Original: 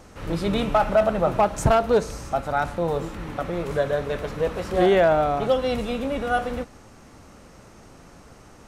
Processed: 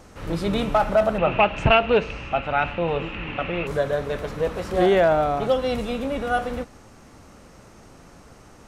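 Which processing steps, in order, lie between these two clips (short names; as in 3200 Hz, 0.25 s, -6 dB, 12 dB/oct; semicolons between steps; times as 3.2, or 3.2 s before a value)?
1.18–3.67 synth low-pass 2700 Hz, resonance Q 9.4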